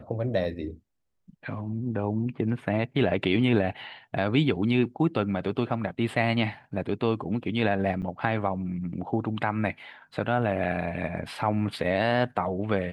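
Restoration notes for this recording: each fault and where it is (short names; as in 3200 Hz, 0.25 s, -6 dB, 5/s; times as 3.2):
8.02–8.03 gap 8 ms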